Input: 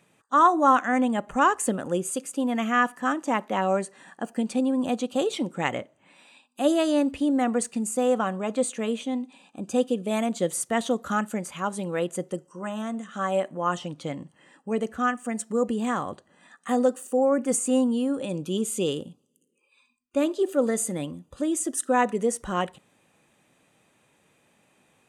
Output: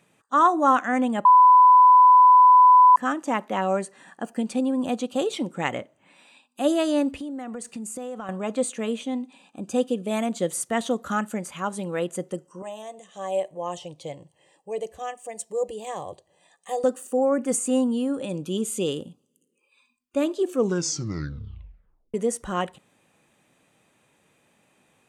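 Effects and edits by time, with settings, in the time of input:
1.25–2.96 s: bleep 1 kHz -9.5 dBFS
7.10–8.29 s: compression, threshold -31 dBFS
12.62–16.84 s: static phaser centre 580 Hz, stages 4
20.40 s: tape stop 1.74 s

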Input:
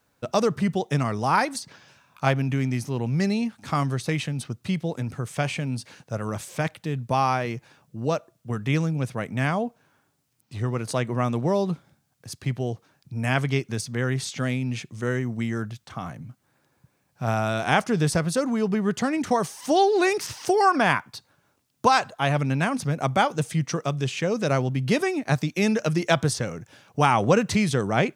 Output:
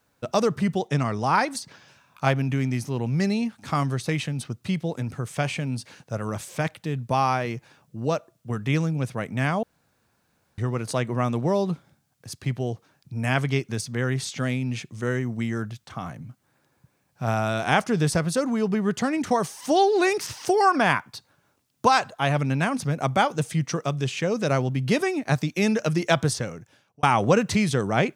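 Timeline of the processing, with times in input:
0.88–1.48 s: low-pass 8.3 kHz
9.63–10.58 s: room tone
26.33–27.03 s: fade out

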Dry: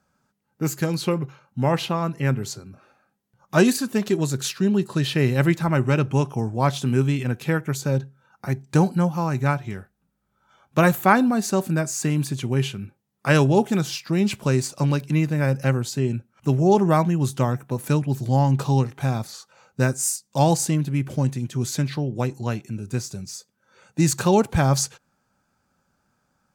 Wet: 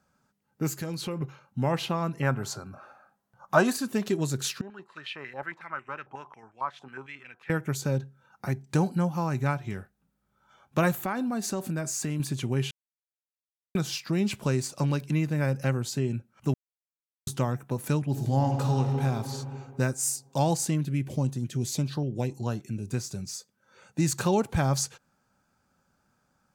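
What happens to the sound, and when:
0.79–1.21 s: compression 3:1, threshold -30 dBFS
2.22–3.77 s: high-order bell 950 Hz +10 dB
4.61–7.50 s: step-sequenced band-pass 11 Hz 820–2400 Hz
10.97–12.20 s: compression 3:1, threshold -25 dBFS
12.71–13.75 s: mute
16.54–17.27 s: mute
18.06–19.02 s: reverb throw, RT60 2.3 s, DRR 3 dB
20.85–22.91 s: LFO notch saw up 1.7 Hz 830–2600 Hz
whole clip: compression 1.5:1, threshold -28 dBFS; trim -1.5 dB

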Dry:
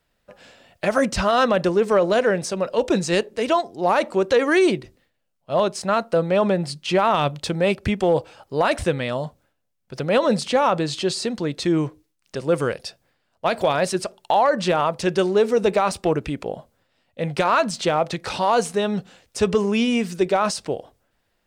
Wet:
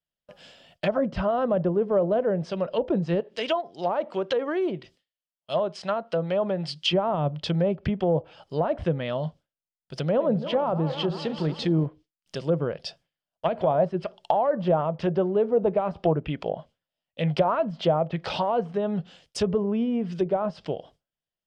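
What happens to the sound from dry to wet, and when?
3.20–6.93 s: tilt EQ +2.5 dB/octave
10.00–11.86 s: backward echo that repeats 184 ms, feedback 67%, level -11.5 dB
12.86–18.68 s: sweeping bell 2.2 Hz 600–2900 Hz +7 dB
whole clip: low-pass that closes with the level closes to 800 Hz, closed at -16.5 dBFS; gate with hold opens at -42 dBFS; graphic EQ with 31 bands 160 Hz +9 dB, 630 Hz +4 dB, 3.15 kHz +11 dB, 5 kHz +7 dB; trim -5.5 dB

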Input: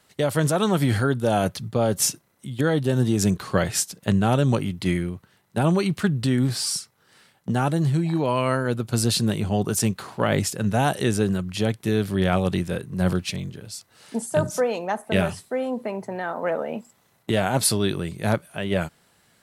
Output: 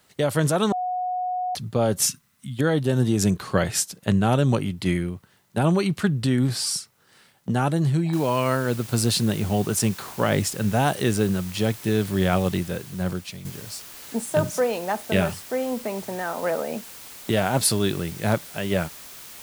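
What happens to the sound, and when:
0.72–1.55 s: bleep 730 Hz -23.5 dBFS
2.06–2.57 s: time-frequency box 260–1000 Hz -18 dB
8.13 s: noise floor step -69 dB -42 dB
12.41–13.45 s: fade out, to -10 dB

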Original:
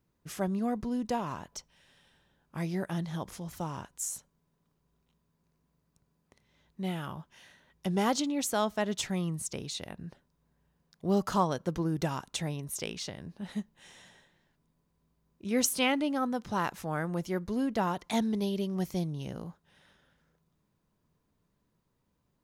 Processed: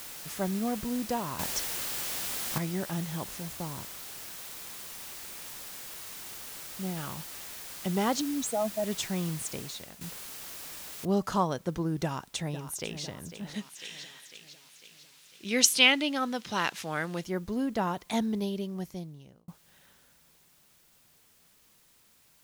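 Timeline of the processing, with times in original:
1.39–2.58 s: gain +8.5 dB
3.53–6.97 s: tape spacing loss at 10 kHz 45 dB
8.21–8.84 s: spectral contrast enhancement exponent 3
9.51–10.01 s: fade out, to -12 dB
11.05 s: noise floor step -43 dB -63 dB
12.03–13.03 s: echo throw 500 ms, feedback 55%, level -11.5 dB
13.54–17.24 s: frequency weighting D
18.37–19.48 s: fade out

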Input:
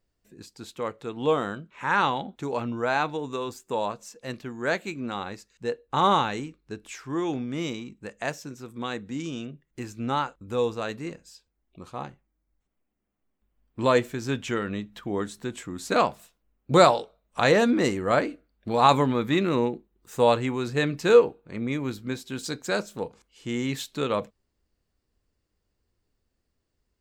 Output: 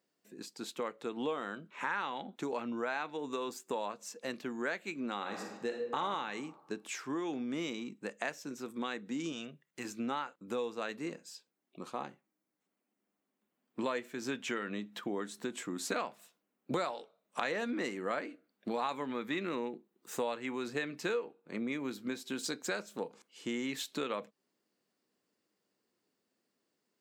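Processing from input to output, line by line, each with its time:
5.18–6.01 s: reverb throw, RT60 1 s, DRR 2.5 dB
9.32–9.85 s: peaking EQ 300 Hz -11 dB 1.2 oct
whole clip: high-pass 190 Hz 24 dB/octave; dynamic bell 2 kHz, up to +6 dB, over -38 dBFS, Q 0.98; compression 5:1, threshold -34 dBFS

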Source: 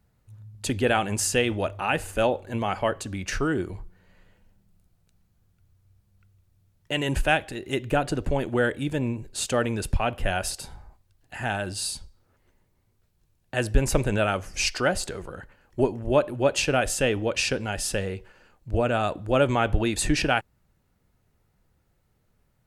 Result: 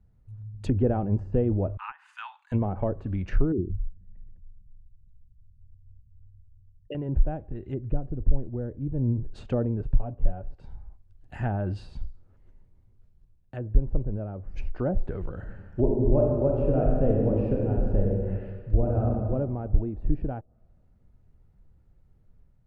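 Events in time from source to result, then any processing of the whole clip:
1.77–2.52 s: steep high-pass 940 Hz 72 dB/octave
3.52–6.95 s: resonances exaggerated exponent 3
7.45–9.20 s: bass shelf 130 Hz +8.5 dB
9.79–10.54 s: comb 7.1 ms
15.36–19.26 s: reverb throw, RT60 1.9 s, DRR -2 dB
whole clip: low-pass that closes with the level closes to 670 Hz, closed at -22.5 dBFS; tilt EQ -3.5 dB/octave; level rider gain up to 3 dB; trim -7.5 dB

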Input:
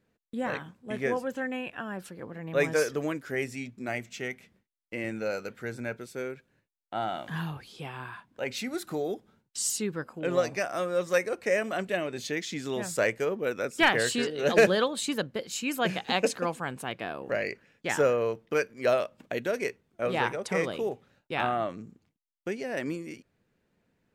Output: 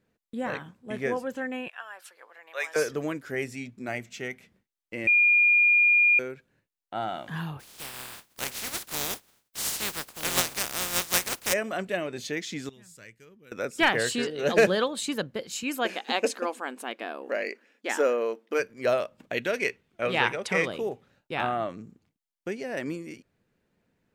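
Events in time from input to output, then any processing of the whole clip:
1.68–2.76 s: Bessel high-pass 1 kHz, order 4
5.07–6.19 s: bleep 2.42 kHz -16.5 dBFS
7.59–11.52 s: spectral contrast reduction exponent 0.18
12.69–13.52 s: amplifier tone stack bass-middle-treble 6-0-2
15.63–18.60 s: brick-wall FIR high-pass 210 Hz
19.32–20.68 s: peaking EQ 2.7 kHz +8.5 dB 1.6 oct

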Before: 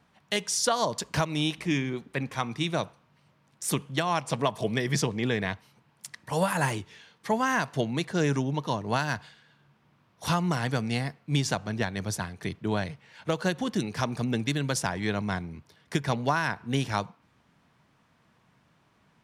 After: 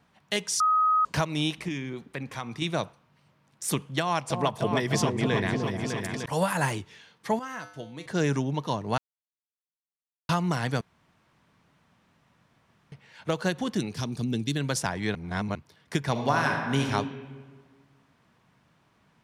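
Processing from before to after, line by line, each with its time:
0.60–1.05 s: bleep 1.26 kHz -19 dBFS
1.68–2.62 s: compression 2:1, threshold -33 dBFS
4.00–6.26 s: delay with an opening low-pass 302 ms, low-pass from 750 Hz, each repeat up 2 oct, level -3 dB
7.39–8.06 s: feedback comb 100 Hz, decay 0.62 s, harmonics odd, mix 80%
8.98–10.29 s: mute
10.81–12.92 s: room tone
13.94–14.56 s: high-order bell 1.1 kHz -9.5 dB 2.5 oct
15.15–15.55 s: reverse
16.11–16.85 s: reverb throw, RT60 1.7 s, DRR 1.5 dB

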